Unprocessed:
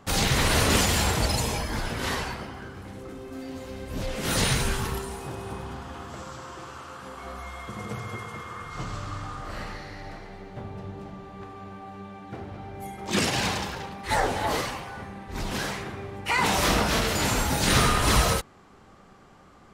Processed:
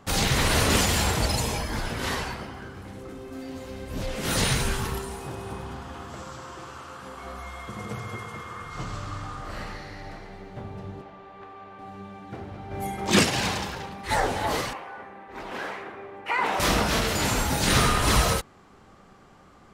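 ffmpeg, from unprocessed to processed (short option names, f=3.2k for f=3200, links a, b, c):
-filter_complex "[0:a]asettb=1/sr,asplit=3[a][b][c];[a]atrim=end=11.014[d];[b]atrim=start=11.01:end=11.79,asetpts=PTS-STARTPTS,afade=t=in:d=0.004:c=qsin,afade=t=out:st=0.776:d=0.004:c=qsin,acrossover=split=370 4100:gain=0.251 1 0.224[e][f][g];[e][f][g]amix=inputs=3:normalize=0[h];[c]atrim=start=11.786[i];[d][h]acrossfade=d=0.004:c1=hsin:c2=qsin[j];[j][i]acrossfade=d=0.004:c1=qsin:c2=hsin,asplit=3[k][l][m];[k]afade=t=out:st=12.7:d=0.02[n];[l]acontrast=55,afade=t=in:st=12.7:d=0.02,afade=t=out:st=13.22:d=0.02[o];[m]afade=t=in:st=13.22:d=0.02[p];[n][o][p]amix=inputs=3:normalize=0,asettb=1/sr,asplit=3[q][r][s];[q]atrim=end=14.734[t];[r]atrim=start=14.73:end=16.6,asetpts=PTS-STARTPTS,afade=t=in:d=0.004:c=qsin,afade=t=out:st=1.866:d=0.004:c=qsin,acrossover=split=290 2700:gain=0.112 1 0.158[u][v][w];[u][v][w]amix=inputs=3:normalize=0[x];[s]atrim=start=16.596[y];[t][x]acrossfade=d=0.004:c1=hsin:c2=qsin[z];[z][y]acrossfade=d=0.004:c1=qsin:c2=hsin"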